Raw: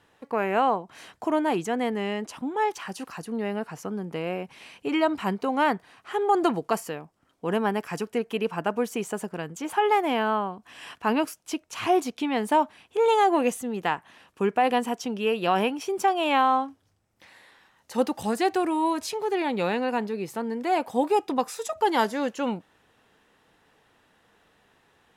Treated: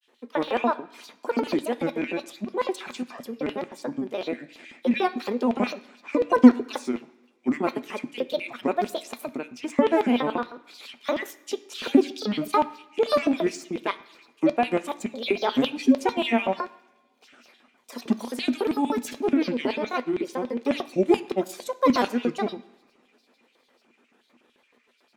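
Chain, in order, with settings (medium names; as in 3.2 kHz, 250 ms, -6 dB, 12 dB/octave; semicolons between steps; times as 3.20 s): LFO high-pass square 6.9 Hz 370–3200 Hz; granulator, spray 18 ms, pitch spread up and down by 7 st; small resonant body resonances 240/2400 Hz, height 13 dB, ringing for 90 ms; on a send: reverberation RT60 1.0 s, pre-delay 3 ms, DRR 9.5 dB; on the sum: trim -2 dB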